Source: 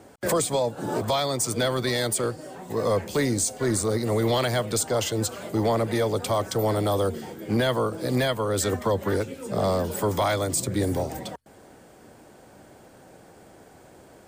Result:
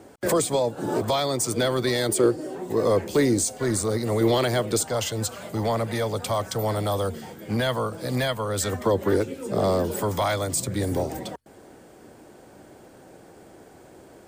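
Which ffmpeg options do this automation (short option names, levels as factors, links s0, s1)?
-af "asetnsamples=n=441:p=0,asendcmd='2.09 equalizer g 13;2.69 equalizer g 7;3.42 equalizer g -0.5;4.21 equalizer g 6;4.83 equalizer g -6;8.79 equalizer g 6;10.03 equalizer g -3.5;10.92 equalizer g 4.5',equalizer=f=350:t=o:w=0.81:g=4"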